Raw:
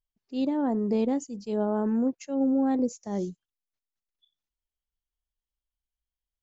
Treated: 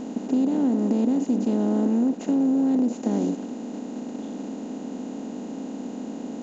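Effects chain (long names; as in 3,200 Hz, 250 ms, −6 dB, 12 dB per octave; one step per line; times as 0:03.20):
compressor on every frequency bin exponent 0.2
parametric band 250 Hz +13.5 dB 0.96 octaves
downward compressor, threshold −12 dBFS, peak gain reduction 6 dB
level −6.5 dB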